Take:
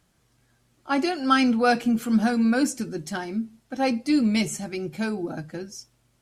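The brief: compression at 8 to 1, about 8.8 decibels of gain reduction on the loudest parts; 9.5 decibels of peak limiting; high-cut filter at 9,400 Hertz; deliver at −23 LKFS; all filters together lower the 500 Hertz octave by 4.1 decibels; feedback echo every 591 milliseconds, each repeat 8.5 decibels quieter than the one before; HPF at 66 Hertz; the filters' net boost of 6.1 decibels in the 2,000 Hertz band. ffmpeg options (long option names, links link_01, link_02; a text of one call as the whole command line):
ffmpeg -i in.wav -af "highpass=66,lowpass=9400,equalizer=frequency=500:width_type=o:gain=-5.5,equalizer=frequency=2000:width_type=o:gain=9,acompressor=threshold=-21dB:ratio=8,alimiter=limit=-21.5dB:level=0:latency=1,aecho=1:1:591|1182|1773|2364:0.376|0.143|0.0543|0.0206,volume=7dB" out.wav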